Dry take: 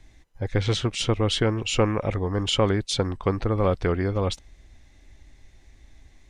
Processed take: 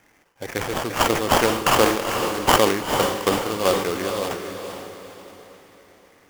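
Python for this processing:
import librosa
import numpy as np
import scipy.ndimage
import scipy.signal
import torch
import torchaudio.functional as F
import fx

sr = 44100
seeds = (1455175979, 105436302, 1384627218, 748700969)

p1 = scipy.signal.sosfilt(scipy.signal.bessel(2, 330.0, 'highpass', norm='mag', fs=sr, output='sos'), x)
p2 = fx.high_shelf_res(p1, sr, hz=4500.0, db=-12.5, q=3.0)
p3 = fx.level_steps(p2, sr, step_db=23)
p4 = p2 + F.gain(torch.from_numpy(p3), 1.5).numpy()
p5 = fx.sample_hold(p4, sr, seeds[0], rate_hz=4000.0, jitter_pct=20)
p6 = fx.echo_diffused(p5, sr, ms=457, feedback_pct=42, wet_db=-6)
p7 = fx.sustainer(p6, sr, db_per_s=75.0)
y = F.gain(torch.from_numpy(p7), -1.0).numpy()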